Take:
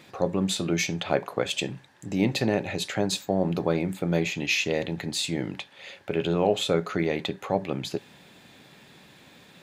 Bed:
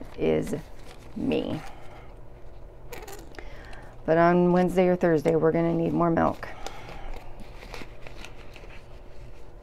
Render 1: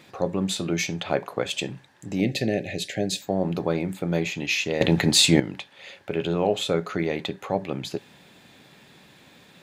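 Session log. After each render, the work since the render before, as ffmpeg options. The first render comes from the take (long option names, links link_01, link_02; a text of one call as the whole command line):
ffmpeg -i in.wav -filter_complex "[0:a]asettb=1/sr,asplit=3[link_01][link_02][link_03];[link_01]atrim=end=2.204[link_04];[link_02]atrim=start=2.2:end=3.22,asetpts=PTS-STARTPTS,afade=type=in:duration=0.004:curve=qsin,afade=type=out:start_time=1.016:duration=0.004:curve=qsin,asuperstop=centerf=1100:order=8:qfactor=1.2[link_05];[link_03]atrim=start=3.216[link_06];[link_04][link_05]acrossfade=duration=0.004:curve1=hsin:curve2=qsin[link_07];[link_07][link_06]acrossfade=duration=0.004:curve1=qsin:curve2=hsin,asplit=3[link_08][link_09][link_10];[link_08]atrim=end=4.812[link_11];[link_09]atrim=start=4.808:end=5.402,asetpts=PTS-STARTPTS,volume=11.5dB[link_12];[link_10]atrim=start=5.398[link_13];[link_11][link_12]acrossfade=duration=0.004:curve1=hsin:curve2=hsin[link_14];[link_14][link_13]acrossfade=duration=0.004:curve1=hsin:curve2=hsin" out.wav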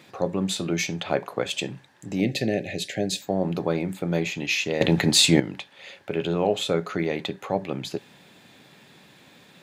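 ffmpeg -i in.wav -af "highpass=84" out.wav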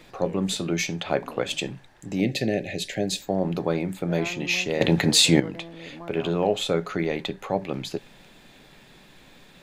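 ffmpeg -i in.wav -i bed.wav -filter_complex "[1:a]volume=-17.5dB[link_01];[0:a][link_01]amix=inputs=2:normalize=0" out.wav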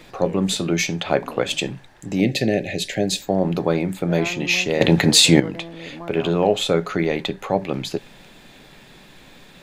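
ffmpeg -i in.wav -af "volume=5dB,alimiter=limit=-1dB:level=0:latency=1" out.wav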